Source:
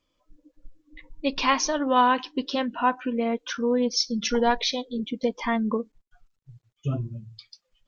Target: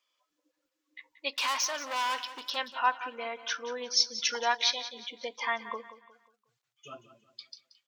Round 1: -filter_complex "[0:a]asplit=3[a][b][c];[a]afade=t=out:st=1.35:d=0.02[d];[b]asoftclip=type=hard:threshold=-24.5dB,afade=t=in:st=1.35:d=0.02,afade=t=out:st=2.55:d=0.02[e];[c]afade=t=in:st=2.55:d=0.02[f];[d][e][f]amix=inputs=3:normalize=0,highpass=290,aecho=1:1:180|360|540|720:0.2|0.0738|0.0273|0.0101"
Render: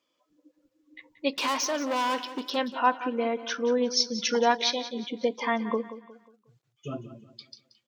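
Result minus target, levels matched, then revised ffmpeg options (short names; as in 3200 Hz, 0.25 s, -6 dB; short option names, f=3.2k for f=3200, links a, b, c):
250 Hz band +16.5 dB
-filter_complex "[0:a]asplit=3[a][b][c];[a]afade=t=out:st=1.35:d=0.02[d];[b]asoftclip=type=hard:threshold=-24.5dB,afade=t=in:st=1.35:d=0.02,afade=t=out:st=2.55:d=0.02[e];[c]afade=t=in:st=2.55:d=0.02[f];[d][e][f]amix=inputs=3:normalize=0,highpass=1k,aecho=1:1:180|360|540|720:0.2|0.0738|0.0273|0.0101"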